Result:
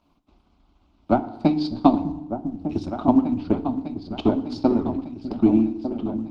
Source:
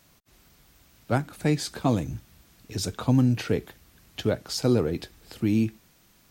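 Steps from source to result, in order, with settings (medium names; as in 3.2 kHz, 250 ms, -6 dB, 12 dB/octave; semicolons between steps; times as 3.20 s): low-pass that closes with the level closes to 2.6 kHz, closed at -17 dBFS; 1.23–2.12 s: peaking EQ 4.6 kHz +13.5 dB 0.6 oct; hum notches 50/100/150/200/250/300 Hz; transient shaper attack +11 dB, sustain -6 dB; static phaser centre 480 Hz, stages 6; 4.61–5.41 s: hysteresis with a dead band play -41 dBFS; distance through air 360 m; delay with an opening low-pass 601 ms, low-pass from 200 Hz, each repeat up 2 oct, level -6 dB; FDN reverb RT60 0.91 s, low-frequency decay 1.1×, high-frequency decay 0.8×, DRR 11 dB; trim +3 dB; Opus 20 kbps 48 kHz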